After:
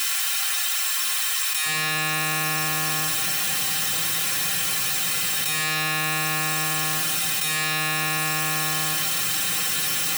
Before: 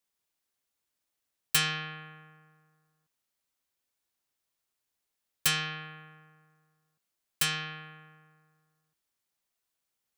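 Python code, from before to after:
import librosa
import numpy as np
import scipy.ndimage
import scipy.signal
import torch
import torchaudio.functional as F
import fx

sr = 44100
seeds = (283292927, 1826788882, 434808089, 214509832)

y = fx.bin_compress(x, sr, power=0.2)
y = fx.highpass(y, sr, hz=fx.steps((0.0, 900.0), (1.66, 170.0)), slope=12)
y = fx.rev_fdn(y, sr, rt60_s=1.5, lf_ratio=1.0, hf_ratio=0.85, size_ms=52.0, drr_db=-6.0)
y = fx.env_flatten(y, sr, amount_pct=100)
y = y * 10.0 ** (-7.0 / 20.0)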